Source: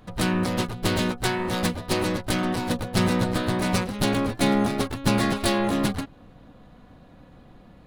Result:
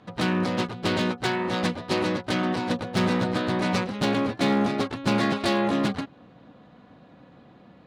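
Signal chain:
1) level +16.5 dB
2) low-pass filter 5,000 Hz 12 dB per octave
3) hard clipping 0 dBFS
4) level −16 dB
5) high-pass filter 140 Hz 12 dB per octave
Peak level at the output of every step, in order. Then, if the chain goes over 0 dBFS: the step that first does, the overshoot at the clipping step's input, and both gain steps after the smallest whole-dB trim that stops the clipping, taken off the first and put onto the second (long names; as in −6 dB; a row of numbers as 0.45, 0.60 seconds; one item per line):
+8.5, +7.5, 0.0, −16.0, −10.0 dBFS
step 1, 7.5 dB
step 1 +8.5 dB, step 4 −8 dB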